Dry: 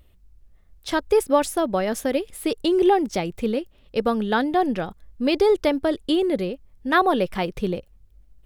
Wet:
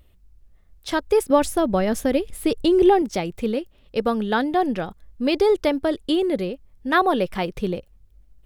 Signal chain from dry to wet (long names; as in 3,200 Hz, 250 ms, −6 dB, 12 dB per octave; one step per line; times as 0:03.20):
0:01.30–0:03.02: low-shelf EQ 200 Hz +11 dB